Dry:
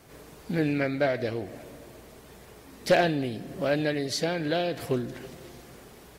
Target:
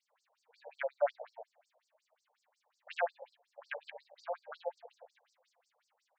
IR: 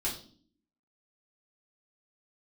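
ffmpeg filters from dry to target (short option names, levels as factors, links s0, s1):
-af "afwtdn=0.0316,afftfilt=real='re*between(b*sr/1024,650*pow(6300/650,0.5+0.5*sin(2*PI*5.5*pts/sr))/1.41,650*pow(6300/650,0.5+0.5*sin(2*PI*5.5*pts/sr))*1.41)':imag='im*between(b*sr/1024,650*pow(6300/650,0.5+0.5*sin(2*PI*5.5*pts/sr))/1.41,650*pow(6300/650,0.5+0.5*sin(2*PI*5.5*pts/sr))*1.41)':win_size=1024:overlap=0.75,volume=0.794"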